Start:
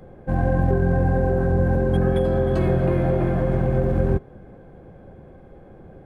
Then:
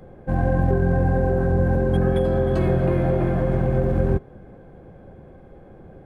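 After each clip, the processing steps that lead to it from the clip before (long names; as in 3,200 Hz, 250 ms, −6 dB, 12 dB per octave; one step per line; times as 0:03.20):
no processing that can be heard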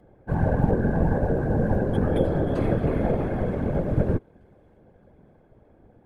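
delay with a high-pass on its return 618 ms, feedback 54%, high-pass 2,700 Hz, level −19.5 dB
random phases in short frames
expander for the loud parts 1.5 to 1, over −34 dBFS
level −1 dB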